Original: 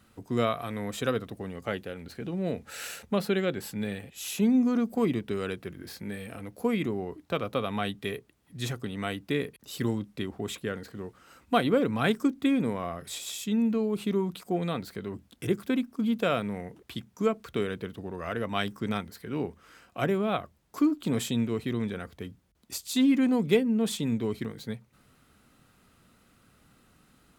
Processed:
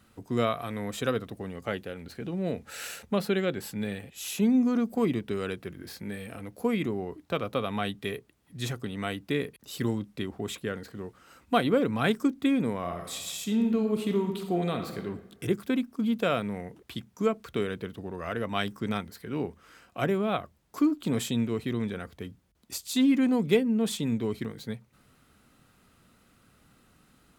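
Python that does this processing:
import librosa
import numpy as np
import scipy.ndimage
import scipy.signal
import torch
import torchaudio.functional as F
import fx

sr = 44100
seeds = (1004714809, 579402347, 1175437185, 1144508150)

y = fx.reverb_throw(x, sr, start_s=12.79, length_s=2.25, rt60_s=1.1, drr_db=5.0)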